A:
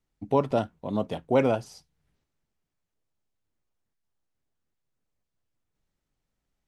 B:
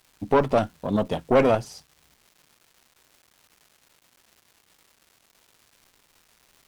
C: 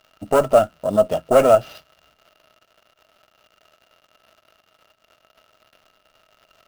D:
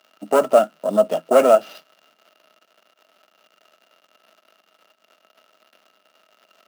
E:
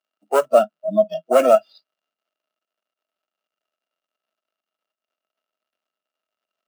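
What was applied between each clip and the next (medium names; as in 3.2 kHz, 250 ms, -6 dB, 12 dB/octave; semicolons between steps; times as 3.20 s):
crackle 570 per s -51 dBFS; valve stage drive 19 dB, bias 0.65; trim +9 dB
sample-rate reducer 8.8 kHz, jitter 20%; small resonant body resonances 630/1300/2800 Hz, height 16 dB, ringing for 35 ms; trim -2 dB
steep high-pass 180 Hz 48 dB/octave
spectral noise reduction 27 dB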